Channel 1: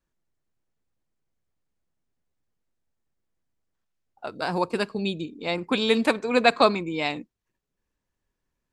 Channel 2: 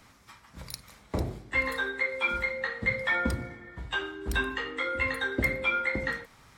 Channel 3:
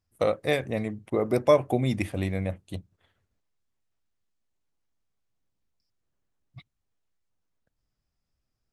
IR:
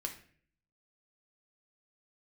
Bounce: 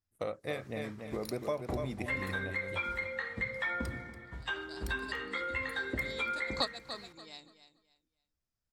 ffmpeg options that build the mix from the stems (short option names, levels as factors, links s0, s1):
-filter_complex "[0:a]lowpass=6100,aexciter=amount=9.8:drive=6.1:freq=3900,volume=0.398,asplit=2[s0][s1];[s1]volume=0.106[s2];[1:a]adelay=550,volume=0.562,asplit=2[s3][s4];[s4]volume=0.126[s5];[2:a]volume=0.316,asplit=3[s6][s7][s8];[s7]volume=0.473[s9];[s8]apad=whole_len=384961[s10];[s0][s10]sidechaingate=range=0.0224:threshold=0.00112:ratio=16:detection=peak[s11];[s2][s5][s9]amix=inputs=3:normalize=0,aecho=0:1:286|572|858|1144:1|0.25|0.0625|0.0156[s12];[s11][s3][s6][s12]amix=inputs=4:normalize=0,equalizer=f=1600:w=1.5:g=2.5,acompressor=threshold=0.0224:ratio=2.5"